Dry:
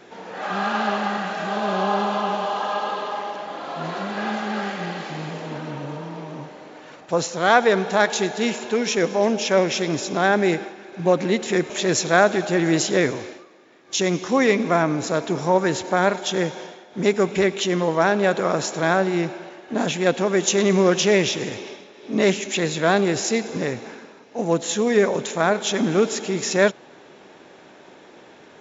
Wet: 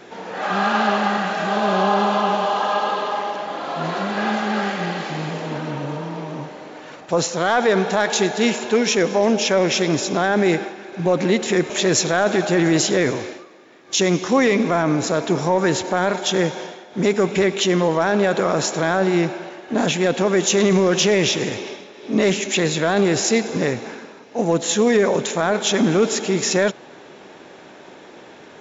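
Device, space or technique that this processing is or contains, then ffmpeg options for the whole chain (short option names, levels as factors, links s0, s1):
soft clipper into limiter: -af "asoftclip=type=tanh:threshold=0.631,alimiter=limit=0.237:level=0:latency=1:release=21,volume=1.68"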